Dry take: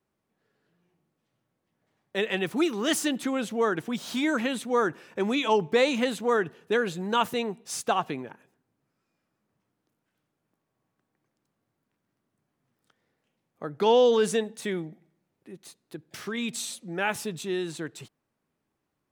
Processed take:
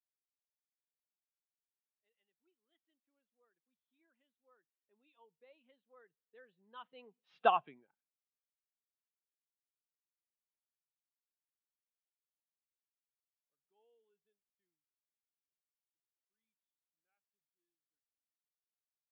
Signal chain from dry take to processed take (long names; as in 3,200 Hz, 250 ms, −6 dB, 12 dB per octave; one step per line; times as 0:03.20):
source passing by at 0:07.46, 19 m/s, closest 1.5 metres
elliptic band-pass filter 130–3,400 Hz
tilt shelving filter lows −5 dB, about 860 Hz
every bin expanded away from the loudest bin 1.5 to 1
level −2 dB